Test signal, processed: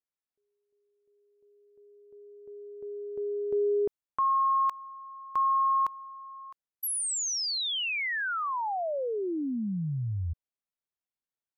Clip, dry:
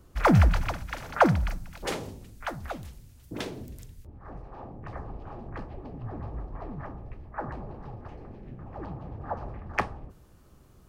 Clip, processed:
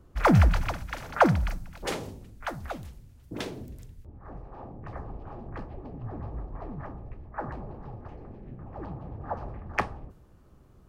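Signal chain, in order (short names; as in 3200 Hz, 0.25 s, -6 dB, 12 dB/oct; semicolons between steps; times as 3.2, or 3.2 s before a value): mismatched tape noise reduction decoder only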